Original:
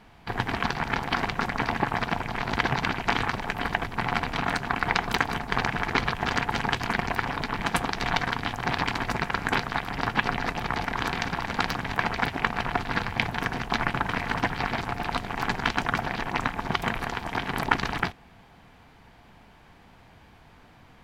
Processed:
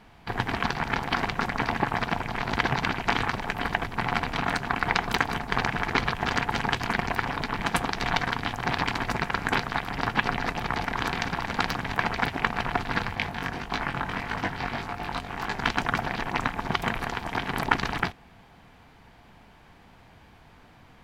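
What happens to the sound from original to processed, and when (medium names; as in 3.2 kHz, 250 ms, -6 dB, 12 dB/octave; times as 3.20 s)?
13.15–15.59 s: chorus 1.7 Hz, delay 19.5 ms, depth 3 ms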